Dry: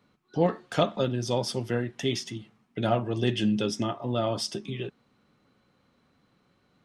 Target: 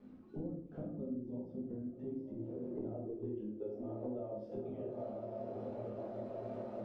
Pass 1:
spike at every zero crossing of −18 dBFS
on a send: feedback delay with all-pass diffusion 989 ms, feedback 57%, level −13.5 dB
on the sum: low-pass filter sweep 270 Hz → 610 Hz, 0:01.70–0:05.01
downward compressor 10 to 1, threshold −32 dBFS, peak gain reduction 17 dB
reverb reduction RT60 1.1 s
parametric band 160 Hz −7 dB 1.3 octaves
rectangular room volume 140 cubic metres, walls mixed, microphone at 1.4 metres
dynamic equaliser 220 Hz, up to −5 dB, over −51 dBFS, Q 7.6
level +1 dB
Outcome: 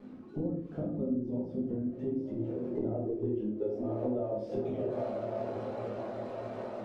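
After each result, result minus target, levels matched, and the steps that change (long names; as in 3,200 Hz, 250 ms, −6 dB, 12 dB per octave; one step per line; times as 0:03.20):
downward compressor: peak gain reduction −9 dB; spike at every zero crossing: distortion +10 dB
change: downward compressor 10 to 1, threshold −42 dBFS, peak gain reduction 26 dB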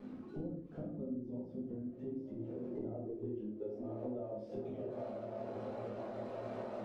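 spike at every zero crossing: distortion +10 dB
change: spike at every zero crossing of −28 dBFS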